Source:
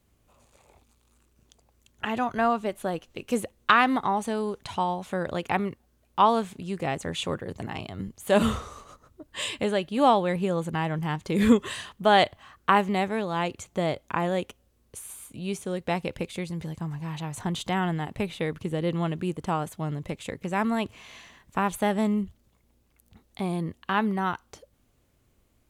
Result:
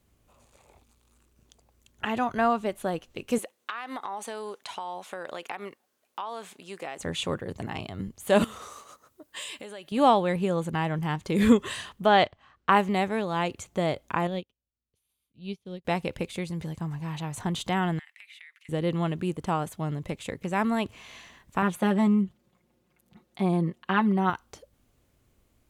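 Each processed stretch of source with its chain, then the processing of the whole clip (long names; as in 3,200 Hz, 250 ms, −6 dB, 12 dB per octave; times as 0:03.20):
0:03.38–0:06.99: Bessel high-pass filter 570 Hz + downward compressor 12 to 1, threshold −30 dBFS
0:08.44–0:09.92: high-shelf EQ 8,000 Hz +9 dB + downward compressor 12 to 1, threshold −33 dBFS + high-pass filter 470 Hz 6 dB per octave
0:12.06–0:12.72: mu-law and A-law mismatch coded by A + high-frequency loss of the air 110 metres
0:14.27–0:15.85: drawn EQ curve 160 Hz 0 dB, 1,600 Hz −11 dB, 3,500 Hz +1 dB, 5,000 Hz −2 dB, 7,900 Hz −20 dB, 12,000 Hz −8 dB + expander for the loud parts 2.5 to 1, over −46 dBFS
0:17.99–0:18.69: four-pole ladder high-pass 1,800 Hz, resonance 65% + downward compressor 10 to 1, threshold −44 dBFS
0:21.62–0:24.30: high-pass filter 110 Hz + high-shelf EQ 3,800 Hz −8.5 dB + comb filter 5.6 ms, depth 80%
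whole clip: no processing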